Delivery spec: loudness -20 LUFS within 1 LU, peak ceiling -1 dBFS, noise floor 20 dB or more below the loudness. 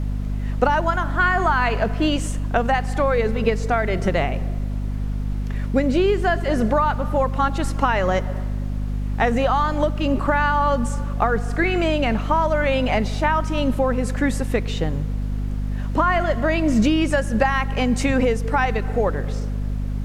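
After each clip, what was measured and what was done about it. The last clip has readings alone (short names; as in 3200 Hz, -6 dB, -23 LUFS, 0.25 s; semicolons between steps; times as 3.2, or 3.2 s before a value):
hum 50 Hz; harmonics up to 250 Hz; hum level -22 dBFS; noise floor -26 dBFS; noise floor target -42 dBFS; loudness -21.5 LUFS; peak -3.5 dBFS; loudness target -20.0 LUFS
-> notches 50/100/150/200/250 Hz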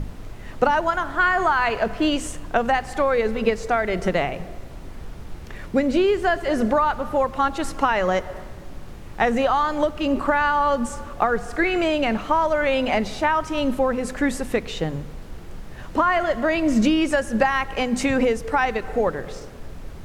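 hum none; noise floor -37 dBFS; noise floor target -42 dBFS
-> noise print and reduce 6 dB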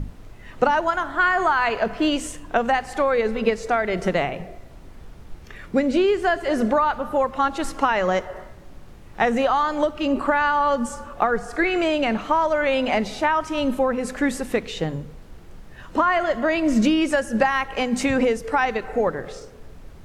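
noise floor -43 dBFS; loudness -22.0 LUFS; peak -5.5 dBFS; loudness target -20.0 LUFS
-> gain +2 dB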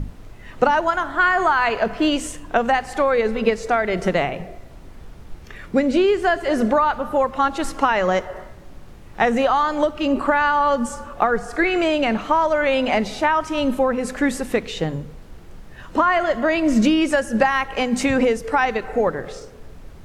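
loudness -20.0 LUFS; peak -3.5 dBFS; noise floor -41 dBFS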